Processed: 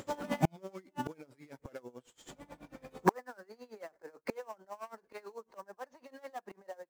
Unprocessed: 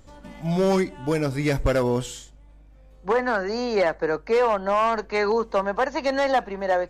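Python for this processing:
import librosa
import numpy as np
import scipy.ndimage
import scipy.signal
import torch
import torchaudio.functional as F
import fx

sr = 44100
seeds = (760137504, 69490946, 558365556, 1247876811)

p1 = fx.spec_quant(x, sr, step_db=15)
p2 = scipy.signal.sosfilt(scipy.signal.butter(2, 240.0, 'highpass', fs=sr, output='sos'), p1)
p3 = fx.gate_flip(p2, sr, shuts_db=-27.0, range_db=-35)
p4 = fx.sample_hold(p3, sr, seeds[0], rate_hz=6800.0, jitter_pct=20)
p5 = p3 + (p4 * 10.0 ** (-5.5 / 20.0))
p6 = p5 * 10.0 ** (-22 * (0.5 - 0.5 * np.cos(2.0 * np.pi * 9.1 * np.arange(len(p5)) / sr)) / 20.0)
y = p6 * 10.0 ** (12.5 / 20.0)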